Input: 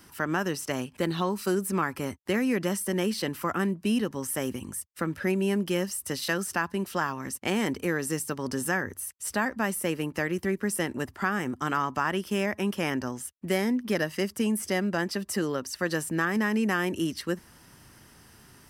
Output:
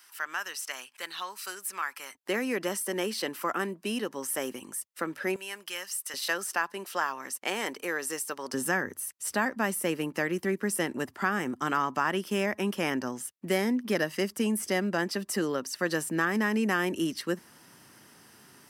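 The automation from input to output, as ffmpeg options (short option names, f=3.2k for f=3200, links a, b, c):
-af "asetnsamples=n=441:p=0,asendcmd='2.15 highpass f 350;5.36 highpass f 1200;6.14 highpass f 510;8.54 highpass f 180',highpass=1.3k"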